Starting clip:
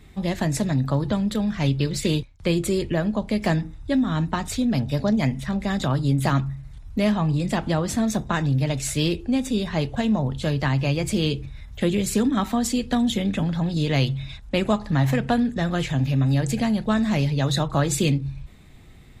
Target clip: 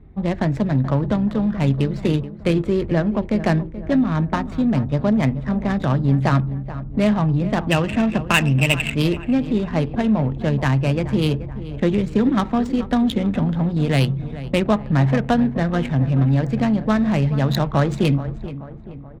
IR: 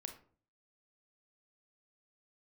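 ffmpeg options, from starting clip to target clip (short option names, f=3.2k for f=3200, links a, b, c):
-filter_complex "[0:a]asplit=3[a][b][c];[a]afade=t=out:st=7.7:d=0.02[d];[b]lowpass=f=2.7k:t=q:w=16,afade=t=in:st=7.7:d=0.02,afade=t=out:st=8.94:d=0.02[e];[c]afade=t=in:st=8.94:d=0.02[f];[d][e][f]amix=inputs=3:normalize=0,adynamicsmooth=sensitivity=2:basefreq=840,asplit=2[g][h];[h]adelay=430,lowpass=f=1.8k:p=1,volume=-13.5dB,asplit=2[i][j];[j]adelay=430,lowpass=f=1.8k:p=1,volume=0.54,asplit=2[k][l];[l]adelay=430,lowpass=f=1.8k:p=1,volume=0.54,asplit=2[m][n];[n]adelay=430,lowpass=f=1.8k:p=1,volume=0.54,asplit=2[o][p];[p]adelay=430,lowpass=f=1.8k:p=1,volume=0.54[q];[g][i][k][m][o][q]amix=inputs=6:normalize=0,volume=3.5dB"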